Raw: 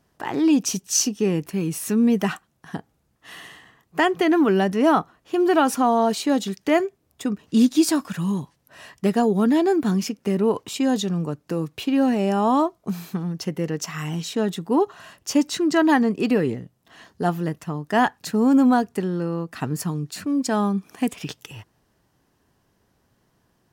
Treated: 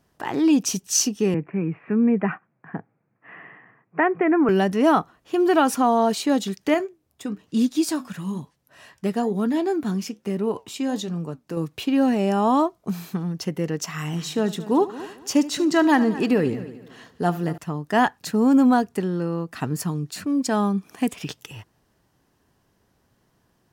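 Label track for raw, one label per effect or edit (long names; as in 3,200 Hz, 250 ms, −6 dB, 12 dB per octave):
1.340000	4.490000	Chebyshev band-pass filter 110–2,400 Hz, order 5
6.740000	11.570000	flanger 1.1 Hz, delay 4.5 ms, depth 6.2 ms, regen −78%
13.940000	17.580000	echo machine with several playback heads 74 ms, heads first and third, feedback 40%, level −17 dB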